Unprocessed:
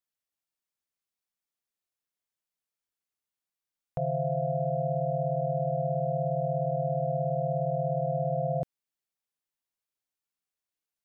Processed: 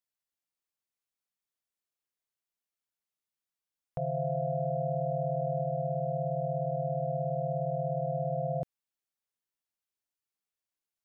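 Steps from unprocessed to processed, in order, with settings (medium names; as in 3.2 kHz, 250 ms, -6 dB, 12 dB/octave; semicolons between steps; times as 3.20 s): 4.17–5.62 s: level flattener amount 50%; trim -3 dB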